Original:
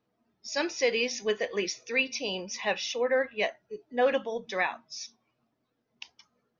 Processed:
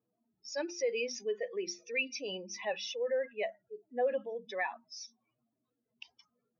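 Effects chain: spectral contrast raised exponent 1.8; notches 50/100/150/200/250/300/350 Hz; gain -6 dB

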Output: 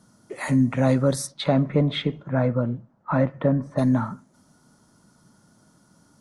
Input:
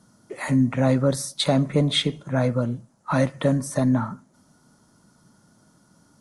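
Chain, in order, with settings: 1.26–3.77 LPF 2800 Hz -> 1400 Hz 12 dB/oct

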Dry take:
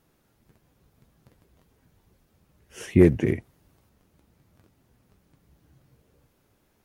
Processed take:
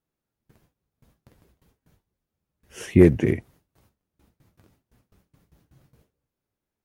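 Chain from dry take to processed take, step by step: gate with hold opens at -51 dBFS; gain +2 dB

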